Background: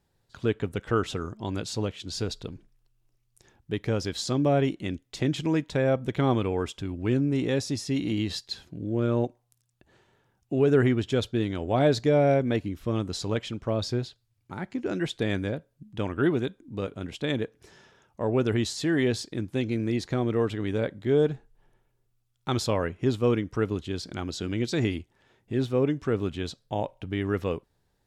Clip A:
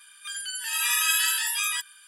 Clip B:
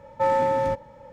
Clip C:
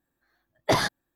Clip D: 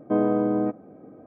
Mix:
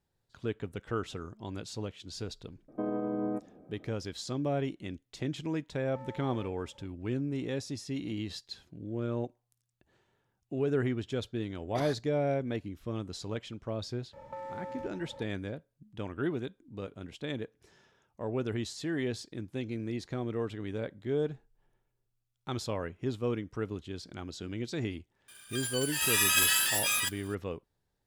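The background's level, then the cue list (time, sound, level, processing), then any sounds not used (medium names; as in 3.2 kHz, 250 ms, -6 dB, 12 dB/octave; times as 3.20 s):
background -8.5 dB
2.68 s: add D -8.5 dB + peak limiter -16 dBFS
5.75 s: add B -15 dB + compression 3:1, threshold -33 dBFS
11.06 s: add C -17.5 dB
14.13 s: add B -3.5 dB + compression 16:1, threshold -34 dBFS
25.28 s: add A -2.5 dB + block-companded coder 3-bit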